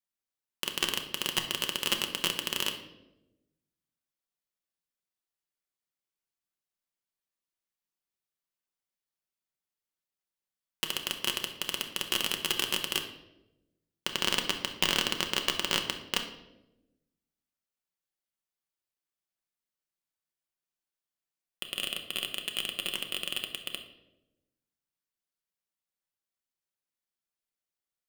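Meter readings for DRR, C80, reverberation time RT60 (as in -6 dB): 4.0 dB, 11.5 dB, 0.95 s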